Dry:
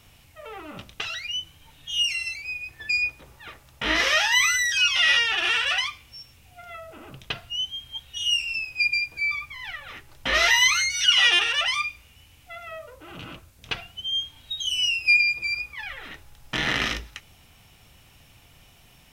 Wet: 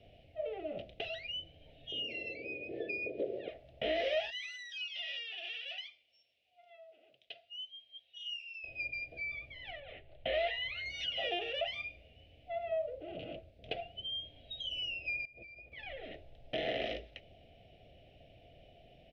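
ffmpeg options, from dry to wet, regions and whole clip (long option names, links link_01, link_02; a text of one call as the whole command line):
ffmpeg -i in.wav -filter_complex "[0:a]asettb=1/sr,asplit=3[link_01][link_02][link_03];[link_01]atrim=end=1.924[link_04];[link_02]atrim=start=1.92:end=3.48,asetpts=PTS-STARTPTS,afade=type=in:duration=0.004:curve=qsin,afade=type=out:start_time=1.556:duration=0.004:curve=qsin,acompressor=mode=upward:threshold=-33dB:ratio=2.5:attack=3.2:release=140:knee=2.83:detection=peak,highpass=230,lowpass=4500,lowshelf=frequency=630:width_type=q:width=3:gain=14[link_05];[link_03]atrim=start=3.476[link_06];[link_04][link_05]acrossfade=duration=0.004:curve1=hsin:curve2=qsin[link_07];[link_07][link_06]acrossfade=duration=0.004:curve1=qsin:curve2=hsin,asettb=1/sr,asplit=3[link_08][link_09][link_10];[link_08]atrim=end=4.304[link_11];[link_09]atrim=start=4.3:end=8.64,asetpts=PTS-STARTPTS,afade=type=in:duration=0.004:curve=qsin,afade=type=out:start_time=4.336:duration=0.004:curve=qsin,lowpass=6500,aderivative[link_12];[link_10]atrim=start=8.636[link_13];[link_11][link_12]acrossfade=duration=0.004:curve1=hsin:curve2=qsin[link_14];[link_14][link_13]acrossfade=duration=0.004:curve1=qsin:curve2=hsin,asettb=1/sr,asplit=3[link_15][link_16][link_17];[link_15]atrim=end=9.804[link_18];[link_16]atrim=start=9.8:end=10.86,asetpts=PTS-STARTPTS,afade=type=in:duration=0.004:curve=qsin,afade=type=out:start_time=1.056:duration=0.004:curve=qsin,lowpass=frequency=3800:width=0.5412,lowpass=frequency=3800:width=1.3066,equalizer=frequency=280:width=0.87:gain=-9[link_19];[link_17]atrim=start=10.856[link_20];[link_18][link_19]acrossfade=duration=0.004:curve1=hsin:curve2=qsin[link_21];[link_21][link_20]acrossfade=duration=0.004:curve1=qsin:curve2=hsin,asettb=1/sr,asplit=3[link_22][link_23][link_24];[link_22]atrim=end=15.254[link_25];[link_23]atrim=start=15.25:end=15.72,asetpts=PTS-STARTPTS,afade=type=in:duration=0.004:curve=qsin,afade=type=out:start_time=0.466:duration=0.004:curve=qsin,agate=range=-33dB:threshold=-41dB:ratio=3:release=100:detection=peak,lowpass=frequency=2000:poles=1,acompressor=threshold=-39dB:ratio=20:attack=3.2:release=140:knee=1:detection=peak[link_26];[link_24]atrim=start=15.716[link_27];[link_25][link_26]acrossfade=duration=0.004:curve1=hsin:curve2=qsin[link_28];[link_28][link_27]acrossfade=duration=0.004:curve1=qsin:curve2=hsin,firequalizer=gain_entry='entry(170,0);entry(670,15);entry(960,-26);entry(2000,-6);entry(3000,-2);entry(6900,-29)':delay=0.05:min_phase=1,acrossover=split=410|950[link_29][link_30][link_31];[link_29]acompressor=threshold=-42dB:ratio=4[link_32];[link_30]acompressor=threshold=-29dB:ratio=4[link_33];[link_31]acompressor=threshold=-32dB:ratio=4[link_34];[link_32][link_33][link_34]amix=inputs=3:normalize=0,volume=-6dB" out.wav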